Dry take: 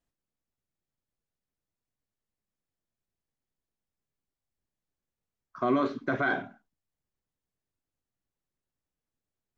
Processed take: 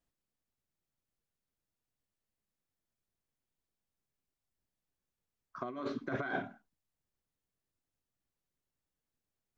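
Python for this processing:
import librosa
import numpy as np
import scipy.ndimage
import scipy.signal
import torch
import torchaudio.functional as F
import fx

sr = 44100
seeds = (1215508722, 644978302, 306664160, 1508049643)

y = fx.over_compress(x, sr, threshold_db=-30.0, ratio=-0.5)
y = F.gain(torch.from_numpy(y), -5.5).numpy()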